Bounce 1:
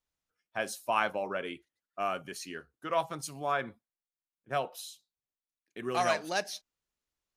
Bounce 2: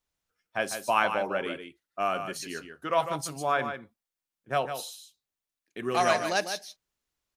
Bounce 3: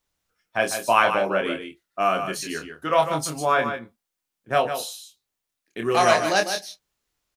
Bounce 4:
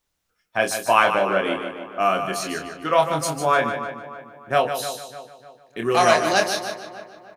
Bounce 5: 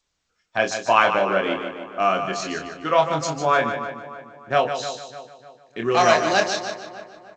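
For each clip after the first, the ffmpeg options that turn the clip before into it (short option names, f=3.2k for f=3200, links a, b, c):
-af "aecho=1:1:150:0.376,volume=4dB"
-filter_complex "[0:a]asplit=2[a][b];[b]adelay=26,volume=-5.5dB[c];[a][c]amix=inputs=2:normalize=0,volume=5.5dB"
-filter_complex "[0:a]asplit=2[a][b];[b]adelay=300,lowpass=f=2.8k:p=1,volume=-11.5dB,asplit=2[c][d];[d]adelay=300,lowpass=f=2.8k:p=1,volume=0.44,asplit=2[e][f];[f]adelay=300,lowpass=f=2.8k:p=1,volume=0.44,asplit=2[g][h];[h]adelay=300,lowpass=f=2.8k:p=1,volume=0.44[i];[a][c][e][g][i]amix=inputs=5:normalize=0,volume=1.5dB"
-ar 16000 -c:a g722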